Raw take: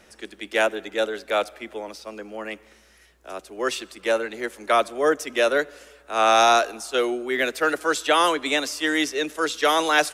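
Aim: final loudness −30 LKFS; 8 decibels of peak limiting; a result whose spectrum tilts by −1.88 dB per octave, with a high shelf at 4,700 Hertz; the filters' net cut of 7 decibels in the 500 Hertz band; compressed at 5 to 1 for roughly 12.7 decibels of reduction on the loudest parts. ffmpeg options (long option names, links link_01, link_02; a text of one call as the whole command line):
ffmpeg -i in.wav -af "equalizer=frequency=500:width_type=o:gain=-9,highshelf=frequency=4700:gain=-6,acompressor=threshold=-31dB:ratio=5,volume=6.5dB,alimiter=limit=-18.5dB:level=0:latency=1" out.wav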